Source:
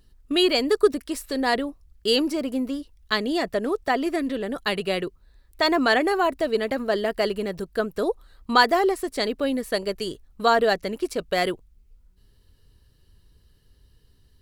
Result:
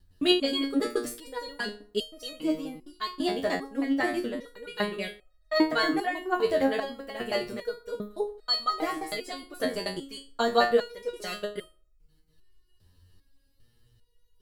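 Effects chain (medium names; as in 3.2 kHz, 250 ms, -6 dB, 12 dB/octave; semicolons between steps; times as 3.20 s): slices played last to first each 106 ms, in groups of 2; FDN reverb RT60 0.54 s, low-frequency decay 0.9×, high-frequency decay 0.4×, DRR 11 dB; resonator arpeggio 2.5 Hz 90–630 Hz; trim +7 dB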